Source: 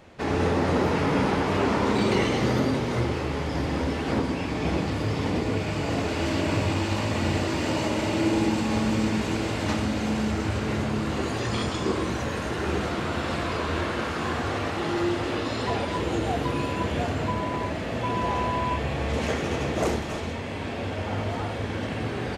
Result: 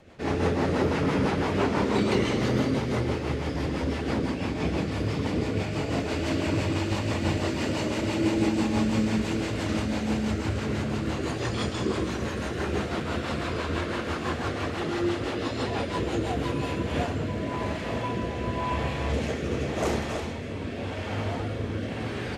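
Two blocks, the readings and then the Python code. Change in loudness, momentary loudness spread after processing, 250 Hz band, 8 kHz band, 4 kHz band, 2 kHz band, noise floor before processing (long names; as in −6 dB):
−1.5 dB, 6 LU, −1.0 dB, −2.0 dB, −2.0 dB, −2.5 dB, −31 dBFS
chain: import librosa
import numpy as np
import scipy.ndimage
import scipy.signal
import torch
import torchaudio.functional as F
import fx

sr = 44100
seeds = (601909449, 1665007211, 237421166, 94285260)

y = x + 10.0 ** (-10.5 / 20.0) * np.pad(x, (int(328 * sr / 1000.0), 0))[:len(x)]
y = fx.rotary_switch(y, sr, hz=6.0, then_hz=0.9, switch_at_s=16.31)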